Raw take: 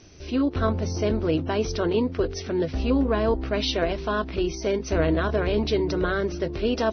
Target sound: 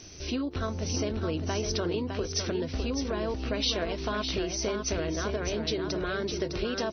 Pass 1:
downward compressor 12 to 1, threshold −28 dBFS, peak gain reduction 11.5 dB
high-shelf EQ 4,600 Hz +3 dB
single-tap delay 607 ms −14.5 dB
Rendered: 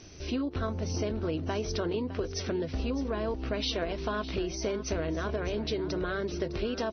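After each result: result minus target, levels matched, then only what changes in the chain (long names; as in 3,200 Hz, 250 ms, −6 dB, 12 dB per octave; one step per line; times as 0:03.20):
8,000 Hz band −5.5 dB; echo-to-direct −8 dB
change: high-shelf EQ 4,600 Hz +13.5 dB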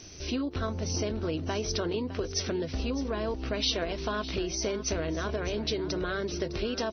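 echo-to-direct −8 dB
change: single-tap delay 607 ms −6.5 dB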